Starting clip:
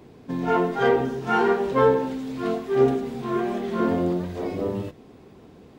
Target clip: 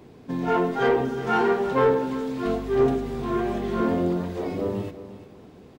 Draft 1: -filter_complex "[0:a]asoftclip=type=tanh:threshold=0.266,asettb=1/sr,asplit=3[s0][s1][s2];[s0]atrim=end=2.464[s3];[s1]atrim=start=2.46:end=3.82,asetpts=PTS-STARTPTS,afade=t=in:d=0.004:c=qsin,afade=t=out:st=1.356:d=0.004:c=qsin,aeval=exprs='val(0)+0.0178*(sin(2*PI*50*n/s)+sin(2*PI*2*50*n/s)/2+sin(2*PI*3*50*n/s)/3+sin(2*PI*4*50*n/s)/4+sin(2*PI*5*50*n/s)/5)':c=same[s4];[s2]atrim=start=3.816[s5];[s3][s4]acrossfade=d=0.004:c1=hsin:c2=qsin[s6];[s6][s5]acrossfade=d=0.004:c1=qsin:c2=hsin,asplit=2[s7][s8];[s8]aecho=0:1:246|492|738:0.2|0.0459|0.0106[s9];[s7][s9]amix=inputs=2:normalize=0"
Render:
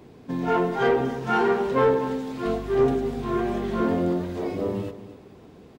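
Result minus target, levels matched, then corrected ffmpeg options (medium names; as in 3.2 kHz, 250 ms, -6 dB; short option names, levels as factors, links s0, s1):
echo 108 ms early
-filter_complex "[0:a]asoftclip=type=tanh:threshold=0.266,asettb=1/sr,asplit=3[s0][s1][s2];[s0]atrim=end=2.464[s3];[s1]atrim=start=2.46:end=3.82,asetpts=PTS-STARTPTS,afade=t=in:d=0.004:c=qsin,afade=t=out:st=1.356:d=0.004:c=qsin,aeval=exprs='val(0)+0.0178*(sin(2*PI*50*n/s)+sin(2*PI*2*50*n/s)/2+sin(2*PI*3*50*n/s)/3+sin(2*PI*4*50*n/s)/4+sin(2*PI*5*50*n/s)/5)':c=same[s4];[s2]atrim=start=3.816[s5];[s3][s4]acrossfade=d=0.004:c1=hsin:c2=qsin[s6];[s6][s5]acrossfade=d=0.004:c1=qsin:c2=hsin,asplit=2[s7][s8];[s8]aecho=0:1:354|708|1062:0.2|0.0459|0.0106[s9];[s7][s9]amix=inputs=2:normalize=0"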